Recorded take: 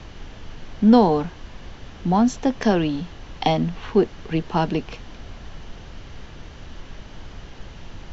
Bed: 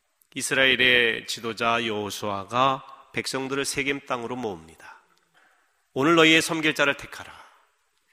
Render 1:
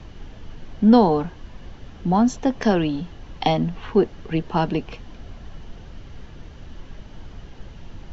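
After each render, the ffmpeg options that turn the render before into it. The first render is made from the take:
ffmpeg -i in.wav -af "afftdn=noise_reduction=6:noise_floor=-42" out.wav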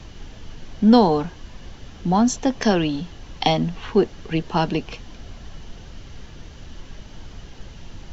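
ffmpeg -i in.wav -af "highshelf=frequency=3900:gain=12" out.wav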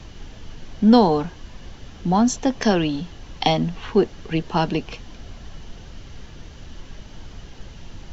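ffmpeg -i in.wav -af anull out.wav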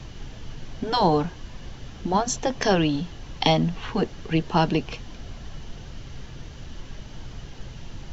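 ffmpeg -i in.wav -af "afftfilt=real='re*lt(hypot(re,im),1.12)':imag='im*lt(hypot(re,im),1.12)':win_size=1024:overlap=0.75,equalizer=frequency=130:width_type=o:width=0.22:gain=7.5" out.wav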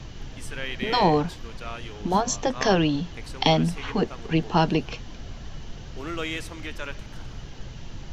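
ffmpeg -i in.wav -i bed.wav -filter_complex "[1:a]volume=-14.5dB[link_01];[0:a][link_01]amix=inputs=2:normalize=0" out.wav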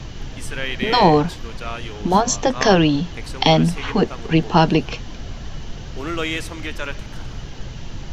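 ffmpeg -i in.wav -af "volume=6.5dB,alimiter=limit=-1dB:level=0:latency=1" out.wav

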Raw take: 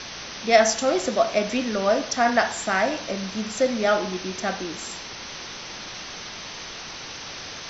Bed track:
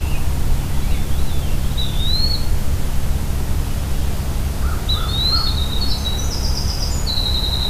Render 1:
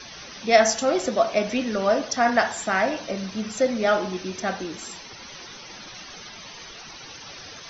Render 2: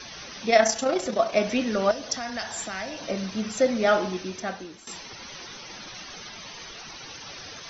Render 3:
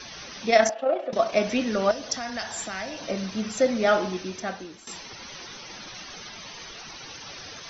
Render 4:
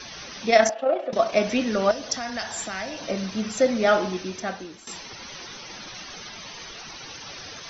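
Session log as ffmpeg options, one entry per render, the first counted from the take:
ffmpeg -i in.wav -af "afftdn=noise_reduction=12:noise_floor=-37" out.wav
ffmpeg -i in.wav -filter_complex "[0:a]asettb=1/sr,asplit=3[link_01][link_02][link_03];[link_01]atrim=end=0.504[link_04];[link_02]atrim=start=0.5:end=1.33,asetpts=PTS-STARTPTS,afade=type=in:duration=0.004:curve=qsin,afade=type=out:start_time=0.826:duration=0.004:curve=qsin,tremolo=f=30:d=0.519[link_05];[link_03]atrim=start=1.326[link_06];[link_04][link_05]acrossfade=duration=0.004:curve1=hsin:curve2=qsin[link_07];[link_07][link_06]acrossfade=duration=0.004:curve1=qsin:curve2=hsin,asettb=1/sr,asplit=3[link_08][link_09][link_10];[link_08]atrim=end=1.914[link_11];[link_09]atrim=start=1.91:end=3.02,asetpts=PTS-STARTPTS,afade=type=in:duration=0.004:curve=qsin,afade=type=out:start_time=1.106:duration=0.004:curve=qsin,acrossover=split=120|3000[link_12][link_13][link_14];[link_13]acompressor=threshold=-36dB:ratio=3:attack=3.2:release=140:knee=2.83:detection=peak[link_15];[link_12][link_15][link_14]amix=inputs=3:normalize=0[link_16];[link_10]atrim=start=3.016[link_17];[link_11][link_16]acrossfade=duration=0.004:curve1=hsin:curve2=qsin[link_18];[link_18][link_17]acrossfade=duration=0.004:curve1=qsin:curve2=hsin,asplit=2[link_19][link_20];[link_19]atrim=end=4.87,asetpts=PTS-STARTPTS,afade=type=out:start_time=4.06:duration=0.81:silence=0.188365[link_21];[link_20]atrim=start=4.87,asetpts=PTS-STARTPTS,afade=type=in:duration=0.004:curve=hsin:silence=0.188365[link_22];[link_21][link_22]concat=n=2:v=0:a=1" out.wav
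ffmpeg -i in.wav -filter_complex "[0:a]asettb=1/sr,asplit=3[link_01][link_02][link_03];[link_01]atrim=end=0.694[link_04];[link_02]atrim=start=0.69:end=1.13,asetpts=PTS-STARTPTS,afade=type=in:duration=0.004:curve=qsin,afade=type=out:start_time=0.436:duration=0.004:curve=qsin,highpass=frequency=320:width=0.5412,highpass=frequency=320:width=1.3066,equalizer=frequency=390:width_type=q:width=4:gain=-9,equalizer=frequency=620:width_type=q:width=4:gain=8,equalizer=frequency=1000:width_type=q:width=4:gain=-7,equalizer=frequency=1500:width_type=q:width=4:gain=-6,equalizer=frequency=2100:width_type=q:width=4:gain=-8,lowpass=frequency=2500:width=0.5412,lowpass=frequency=2500:width=1.3066[link_05];[link_03]atrim=start=1.126[link_06];[link_04][link_05]acrossfade=duration=0.004:curve1=hsin:curve2=qsin[link_07];[link_07][link_06]acrossfade=duration=0.004:curve1=qsin:curve2=hsin" out.wav
ffmpeg -i in.wav -af "volume=1.5dB" out.wav

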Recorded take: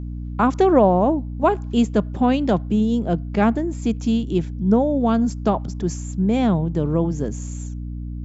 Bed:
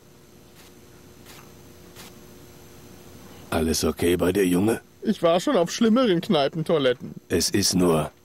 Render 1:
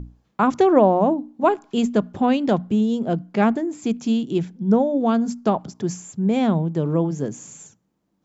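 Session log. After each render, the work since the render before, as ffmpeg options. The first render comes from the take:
ffmpeg -i in.wav -af "bandreject=frequency=60:width_type=h:width=6,bandreject=frequency=120:width_type=h:width=6,bandreject=frequency=180:width_type=h:width=6,bandreject=frequency=240:width_type=h:width=6,bandreject=frequency=300:width_type=h:width=6" out.wav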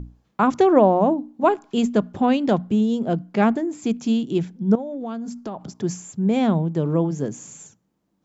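ffmpeg -i in.wav -filter_complex "[0:a]asettb=1/sr,asplit=3[link_01][link_02][link_03];[link_01]atrim=end=4.754[link_04];[link_02]atrim=start=4.75:end=5.71,asetpts=PTS-STARTPTS,afade=type=in:duration=0.004:curve=qsin,afade=type=out:start_time=0.956:duration=0.004:curve=qsin,acompressor=threshold=-28dB:ratio=5:attack=3.2:release=140:knee=1:detection=peak[link_05];[link_03]atrim=start=5.706[link_06];[link_04][link_05]acrossfade=duration=0.004:curve1=hsin:curve2=qsin[link_07];[link_07][link_06]acrossfade=duration=0.004:curve1=qsin:curve2=hsin" out.wav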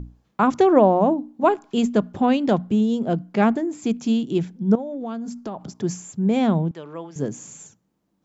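ffmpeg -i in.wav -filter_complex "[0:a]asettb=1/sr,asplit=3[link_01][link_02][link_03];[link_01]atrim=end=6.714[link_04];[link_02]atrim=start=6.71:end=7.16,asetpts=PTS-STARTPTS,afade=type=in:duration=0.004:curve=qsin,afade=type=out:start_time=0.446:duration=0.004:curve=qsin,bandpass=frequency=2500:width_type=q:width=0.73[link_05];[link_03]atrim=start=7.156[link_06];[link_04][link_05]acrossfade=duration=0.004:curve1=hsin:curve2=qsin[link_07];[link_07][link_06]acrossfade=duration=0.004:curve1=qsin:curve2=hsin" out.wav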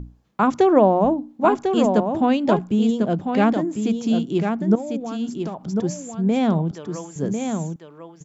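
ffmpeg -i in.wav -af "aecho=1:1:1048:0.501" out.wav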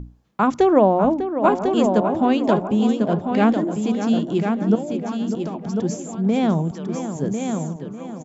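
ffmpeg -i in.wav -filter_complex "[0:a]asplit=2[link_01][link_02];[link_02]adelay=598,lowpass=frequency=2300:poles=1,volume=-9.5dB,asplit=2[link_03][link_04];[link_04]adelay=598,lowpass=frequency=2300:poles=1,volume=0.48,asplit=2[link_05][link_06];[link_06]adelay=598,lowpass=frequency=2300:poles=1,volume=0.48,asplit=2[link_07][link_08];[link_08]adelay=598,lowpass=frequency=2300:poles=1,volume=0.48,asplit=2[link_09][link_10];[link_10]adelay=598,lowpass=frequency=2300:poles=1,volume=0.48[link_11];[link_01][link_03][link_05][link_07][link_09][link_11]amix=inputs=6:normalize=0" out.wav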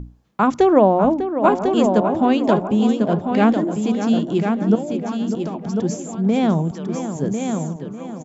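ffmpeg -i in.wav -af "volume=1.5dB" out.wav

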